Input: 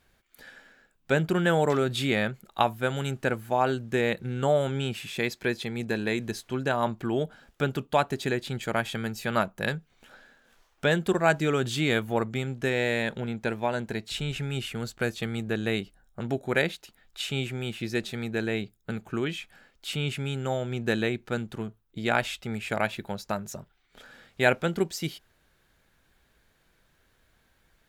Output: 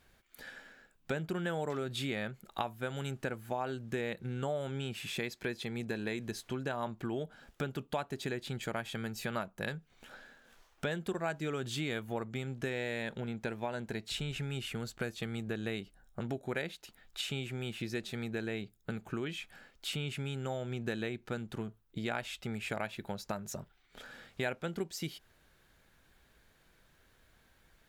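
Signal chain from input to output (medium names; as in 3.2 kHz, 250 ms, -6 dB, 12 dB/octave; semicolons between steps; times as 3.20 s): compression 3:1, threshold -36 dBFS, peak gain reduction 15 dB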